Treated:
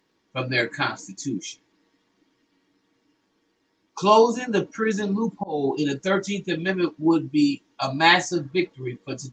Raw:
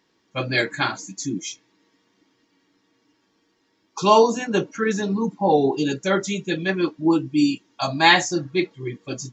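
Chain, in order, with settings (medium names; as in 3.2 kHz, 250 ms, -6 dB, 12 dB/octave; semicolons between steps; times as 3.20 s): 5.01–6.33 s: slow attack 303 ms; trim -1 dB; Opus 32 kbps 48 kHz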